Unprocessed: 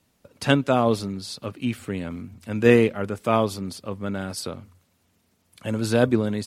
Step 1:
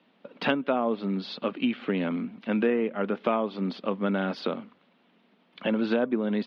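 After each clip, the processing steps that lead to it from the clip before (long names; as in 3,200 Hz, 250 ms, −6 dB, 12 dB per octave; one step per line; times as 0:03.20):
treble cut that deepens with the level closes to 2,200 Hz, closed at −14.5 dBFS
elliptic band-pass filter 200–3,400 Hz, stop band 40 dB
downward compressor 6 to 1, threshold −29 dBFS, peak gain reduction 16.5 dB
level +6.5 dB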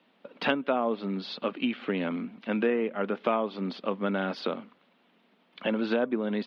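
low-shelf EQ 210 Hz −6.5 dB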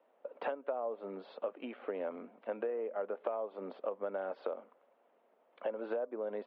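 four-pole ladder band-pass 650 Hz, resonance 45%
downward compressor 6 to 1, threshold −42 dBFS, peak gain reduction 11.5 dB
level +8.5 dB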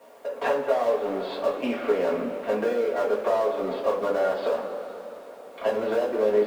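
mu-law and A-law mismatch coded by mu
coupled-rooms reverb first 0.27 s, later 4 s, from −18 dB, DRR −6 dB
level +5.5 dB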